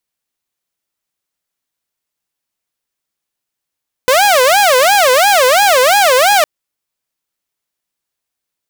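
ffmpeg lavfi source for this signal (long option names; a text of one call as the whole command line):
ffmpeg -f lavfi -i "aevalsrc='0.596*(2*mod((664.5*t-164.5/(2*PI*2.9)*sin(2*PI*2.9*t)),1)-1)':duration=2.36:sample_rate=44100" out.wav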